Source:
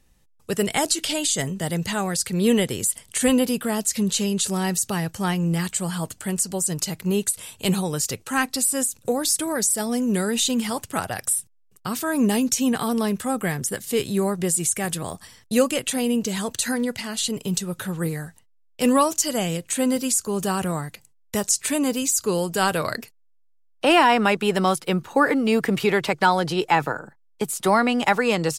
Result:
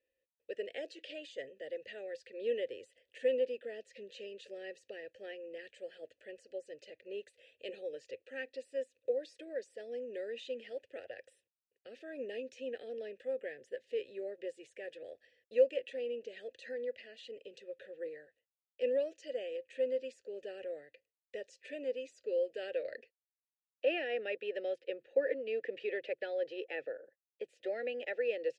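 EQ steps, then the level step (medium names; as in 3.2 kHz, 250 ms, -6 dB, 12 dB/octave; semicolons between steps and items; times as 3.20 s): vowel filter e; low-pass 4.1 kHz 12 dB/octave; static phaser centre 420 Hz, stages 4; -4.0 dB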